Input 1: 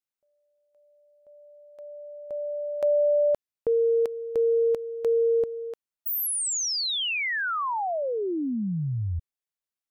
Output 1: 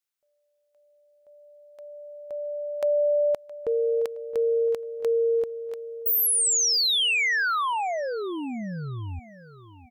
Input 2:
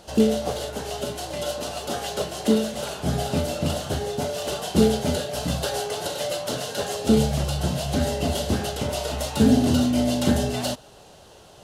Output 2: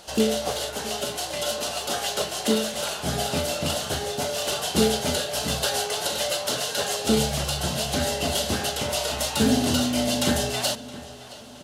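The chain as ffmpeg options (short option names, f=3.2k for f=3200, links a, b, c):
-filter_complex "[0:a]tiltshelf=f=690:g=-5.5,asplit=2[a][b];[b]adelay=668,lowpass=f=4.2k:p=1,volume=-17dB,asplit=2[c][d];[d]adelay=668,lowpass=f=4.2k:p=1,volume=0.47,asplit=2[e][f];[f]adelay=668,lowpass=f=4.2k:p=1,volume=0.47,asplit=2[g][h];[h]adelay=668,lowpass=f=4.2k:p=1,volume=0.47[i];[a][c][e][g][i]amix=inputs=5:normalize=0"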